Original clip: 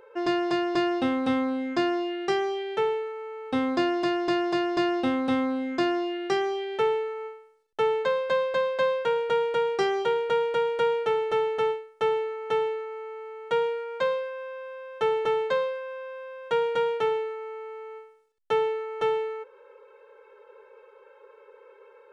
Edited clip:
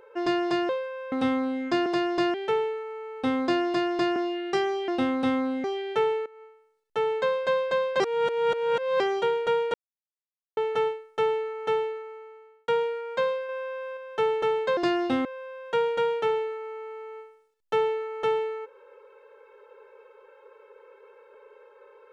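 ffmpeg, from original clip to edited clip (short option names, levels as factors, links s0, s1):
-filter_complex "[0:a]asplit=18[s0][s1][s2][s3][s4][s5][s6][s7][s8][s9][s10][s11][s12][s13][s14][s15][s16][s17];[s0]atrim=end=0.692[s18];[s1]atrim=start=15.598:end=16.032[s19];[s2]atrim=start=1.168:end=1.912[s20];[s3]atrim=start=4.448:end=4.932[s21];[s4]atrim=start=2.628:end=4.452[s22];[s5]atrim=start=1.908:end=2.632[s23];[s6]atrim=start=4.928:end=5.692[s24];[s7]atrim=start=6.468:end=7.09,asetpts=PTS-STARTPTS,afade=t=out:st=0.618:d=0.004:c=hsin:silence=0.125893[s25];[s8]atrim=start=7.09:end=8.832,asetpts=PTS-STARTPTS,afade=t=in:d=1:silence=0.125893[s26];[s9]atrim=start=8.828:end=9.832,asetpts=PTS-STARTPTS,areverse[s27];[s10]atrim=start=9.828:end=10.57,asetpts=PTS-STARTPTS,afade=t=out:st=0.738:d=0.004:c=hsin[s28];[s11]atrim=start=10.57:end=11.4,asetpts=PTS-STARTPTS,volume=0[s29];[s12]atrim=start=11.4:end=13.51,asetpts=PTS-STARTPTS,afade=t=in:d=0.004:c=hsin,afade=t=out:st=1.16:d=0.95[s30];[s13]atrim=start=13.51:end=14.322,asetpts=PTS-STARTPTS,afade=t=in:d=0.004:c=hsin[s31];[s14]atrim=start=14.318:end=14.802,asetpts=PTS-STARTPTS,volume=1.5[s32];[s15]atrim=start=14.798:end=15.602[s33];[s16]atrim=start=0.688:end=1.172[s34];[s17]atrim=start=16.028[s35];[s18][s19]acrossfade=d=0.004:c1=hsin:c2=hsin[s36];[s36][s20]acrossfade=d=0.004:c1=hsin:c2=hsin[s37];[s37][s21]acrossfade=d=0.004:c1=hsin:c2=hsin[s38];[s38][s22]acrossfade=d=0.004:c1=hsin:c2=hsin[s39];[s39][s23]acrossfade=d=0.004:c1=hsin:c2=hsin[s40];[s40][s24]acrossfade=d=0.004:c1=hsin:c2=hsin[s41];[s25][s26]concat=n=2:v=0:a=1[s42];[s41][s42]acrossfade=d=0.004:c1=hsin:c2=hsin[s43];[s43][s27]acrossfade=d=0.004:c1=hsin:c2=hsin[s44];[s28][s29][s30][s31]concat=n=4:v=0:a=1[s45];[s44][s45]acrossfade=d=0.004:c1=hsin:c2=hsin[s46];[s46][s32]acrossfade=d=0.004:c1=hsin:c2=hsin[s47];[s47][s33]acrossfade=d=0.004:c1=hsin:c2=hsin[s48];[s48][s34]acrossfade=d=0.004:c1=hsin:c2=hsin[s49];[s49][s35]acrossfade=d=0.004:c1=hsin:c2=hsin"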